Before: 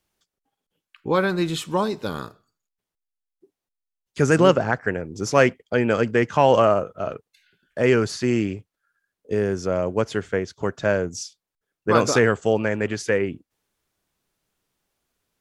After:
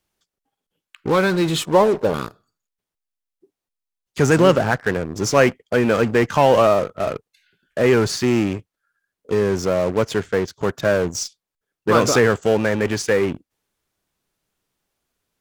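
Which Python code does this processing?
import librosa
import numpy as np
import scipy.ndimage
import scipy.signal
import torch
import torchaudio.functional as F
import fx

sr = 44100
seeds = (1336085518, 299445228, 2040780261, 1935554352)

p1 = fx.curve_eq(x, sr, hz=(260.0, 510.0, 1000.0, 2000.0), db=(0, 10, 5, -14), at=(1.65, 2.14))
p2 = fx.fuzz(p1, sr, gain_db=31.0, gate_db=-38.0)
y = p1 + F.gain(torch.from_numpy(p2), -11.0).numpy()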